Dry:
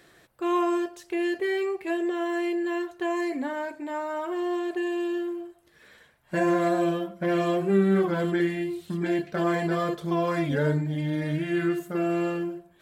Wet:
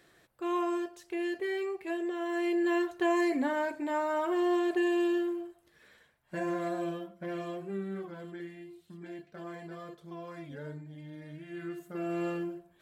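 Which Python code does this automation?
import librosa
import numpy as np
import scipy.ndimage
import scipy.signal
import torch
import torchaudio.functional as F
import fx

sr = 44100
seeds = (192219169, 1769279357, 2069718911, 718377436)

y = fx.gain(x, sr, db=fx.line((2.21, -6.5), (2.67, 0.5), (5.06, 0.5), (6.34, -10.0), (6.95, -10.0), (8.18, -18.0), (11.39, -18.0), (12.29, -5.5)))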